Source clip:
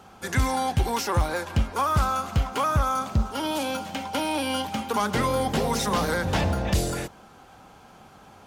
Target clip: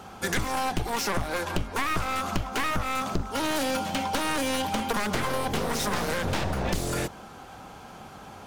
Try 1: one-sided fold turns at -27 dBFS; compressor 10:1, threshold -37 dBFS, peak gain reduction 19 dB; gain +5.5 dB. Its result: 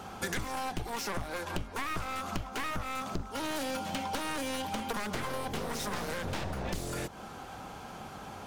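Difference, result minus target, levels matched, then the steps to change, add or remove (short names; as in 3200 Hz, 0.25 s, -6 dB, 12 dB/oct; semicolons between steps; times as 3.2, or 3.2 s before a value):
compressor: peak gain reduction +7.5 dB
change: compressor 10:1, threshold -28.5 dBFS, peak gain reduction 11 dB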